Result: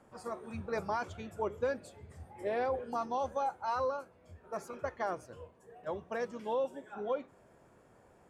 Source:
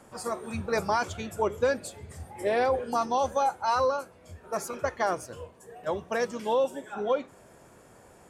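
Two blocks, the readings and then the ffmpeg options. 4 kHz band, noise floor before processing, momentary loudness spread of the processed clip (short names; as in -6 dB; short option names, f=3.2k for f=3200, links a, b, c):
-13.0 dB, -55 dBFS, 17 LU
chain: -af "highshelf=f=3.9k:g=-11,volume=-7.5dB"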